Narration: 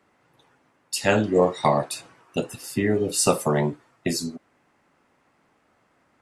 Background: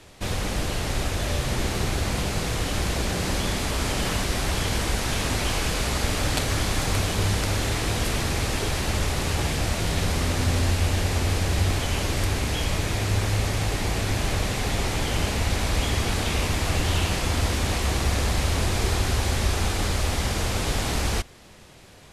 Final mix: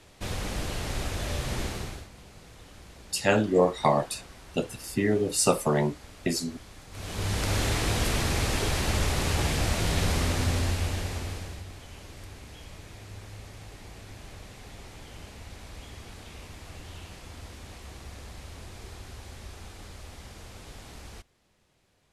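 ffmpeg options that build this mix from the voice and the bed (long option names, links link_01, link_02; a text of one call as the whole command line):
ffmpeg -i stem1.wav -i stem2.wav -filter_complex "[0:a]adelay=2200,volume=-2.5dB[link_01];[1:a]volume=16.5dB,afade=type=out:start_time=1.6:duration=0.48:silence=0.125893,afade=type=in:start_time=6.91:duration=0.67:silence=0.0794328,afade=type=out:start_time=10.12:duration=1.52:silence=0.11885[link_02];[link_01][link_02]amix=inputs=2:normalize=0" out.wav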